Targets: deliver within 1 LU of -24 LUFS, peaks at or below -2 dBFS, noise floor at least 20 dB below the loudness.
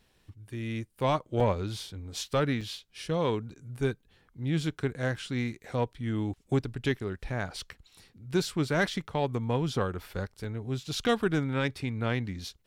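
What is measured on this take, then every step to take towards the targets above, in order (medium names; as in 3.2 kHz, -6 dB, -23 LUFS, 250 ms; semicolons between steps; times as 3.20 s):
dropouts 3; longest dropout 2.8 ms; loudness -31.5 LUFS; peak level -15.5 dBFS; loudness target -24.0 LUFS
-> interpolate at 1.40/2.61/10.44 s, 2.8 ms; trim +7.5 dB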